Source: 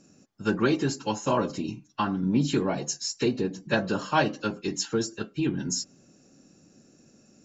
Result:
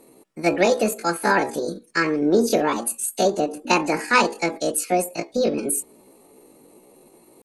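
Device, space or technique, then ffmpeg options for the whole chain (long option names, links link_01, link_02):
chipmunk voice: -af "asetrate=70004,aresample=44100,atempo=0.629961,volume=6dB"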